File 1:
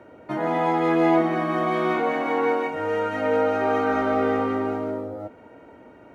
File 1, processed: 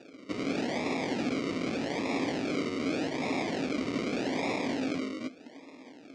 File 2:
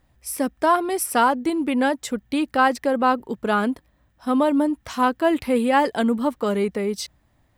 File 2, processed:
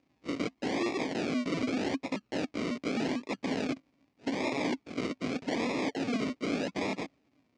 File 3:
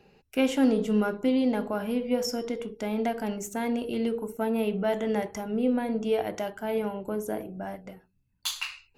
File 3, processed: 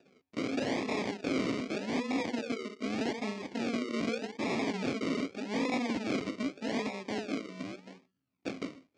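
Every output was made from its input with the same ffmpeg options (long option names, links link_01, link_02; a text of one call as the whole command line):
ffmpeg -i in.wav -af "acrusher=samples=41:mix=1:aa=0.000001:lfo=1:lforange=24.6:lforate=0.83,aeval=exprs='(mod(13.3*val(0)+1,2)-1)/13.3':channel_layout=same,highpass=200,equalizer=frequency=270:width_type=q:width=4:gain=10,equalizer=frequency=1500:width_type=q:width=4:gain=-5,equalizer=frequency=2300:width_type=q:width=4:gain=8,equalizer=frequency=4700:width_type=q:width=4:gain=3,lowpass=frequency=6700:width=0.5412,lowpass=frequency=6700:width=1.3066,volume=-5dB" out.wav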